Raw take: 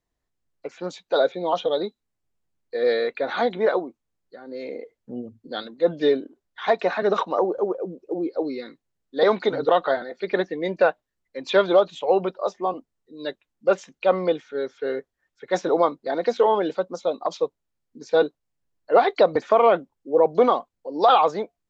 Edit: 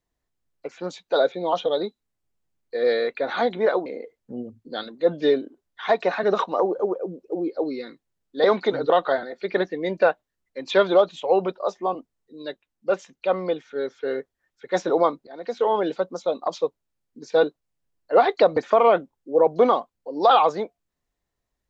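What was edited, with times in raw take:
3.86–4.65 cut
13.21–14.44 gain -3 dB
16.06–16.63 fade in, from -21.5 dB

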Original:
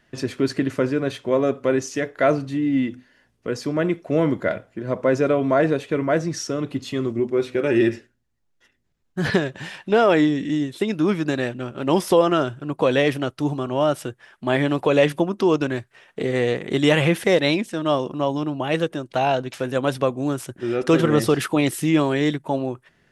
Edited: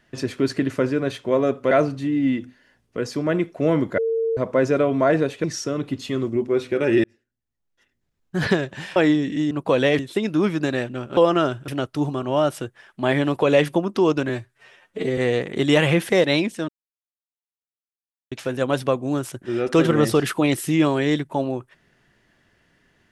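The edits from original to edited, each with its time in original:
1.71–2.21 cut
4.48–4.87 bleep 453 Hz -19 dBFS
5.94–6.27 cut
7.87–9.2 fade in
9.79–10.09 cut
11.82–12.13 cut
12.64–13.12 move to 10.64
15.73–16.32 stretch 1.5×
17.83–19.46 mute

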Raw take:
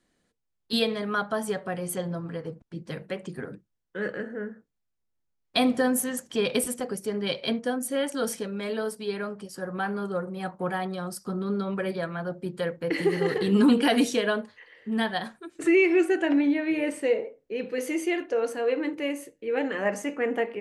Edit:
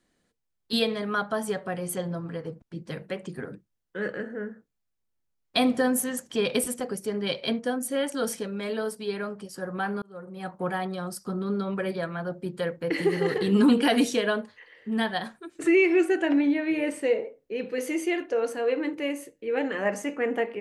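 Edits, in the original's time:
10.02–10.6 fade in

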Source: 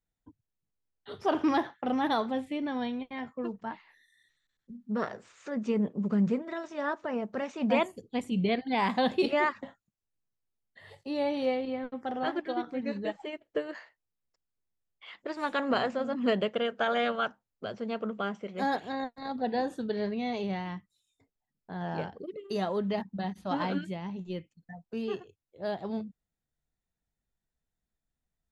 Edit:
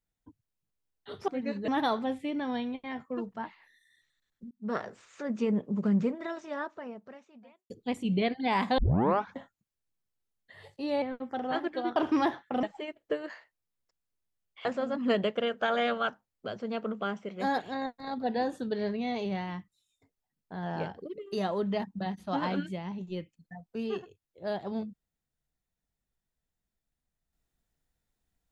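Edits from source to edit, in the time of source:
1.28–1.95 swap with 12.68–13.08
4.78–5.03 fade in
6.6–7.97 fade out quadratic
9.05 tape start 0.58 s
11.29–11.74 cut
15.1–15.83 cut

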